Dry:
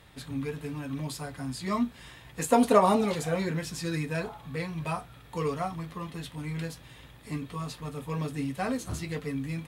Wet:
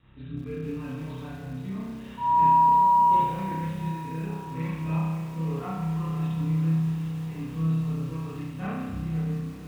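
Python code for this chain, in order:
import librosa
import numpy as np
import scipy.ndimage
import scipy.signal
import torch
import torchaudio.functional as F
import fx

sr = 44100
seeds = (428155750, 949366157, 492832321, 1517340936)

y = fx.fade_out_tail(x, sr, length_s=0.92)
y = fx.curve_eq(y, sr, hz=(270.0, 670.0, 1300.0), db=(0, -14, -9))
y = fx.over_compress(y, sr, threshold_db=-34.0, ratio=-0.5)
y = fx.rotary(y, sr, hz=0.8)
y = fx.dmg_tone(y, sr, hz=960.0, level_db=-34.0, at=(2.17, 3.16), fade=0.02)
y = scipy.signal.sosfilt(scipy.signal.cheby1(6, 6, 3900.0, 'lowpass', fs=sr, output='sos'), y)
y = fx.echo_diffused(y, sr, ms=546, feedback_pct=66, wet_db=-12.5)
y = fx.rev_spring(y, sr, rt60_s=1.1, pass_ms=(31,), chirp_ms=70, drr_db=-10.0)
y = fx.echo_crushed(y, sr, ms=168, feedback_pct=80, bits=7, wet_db=-14.5)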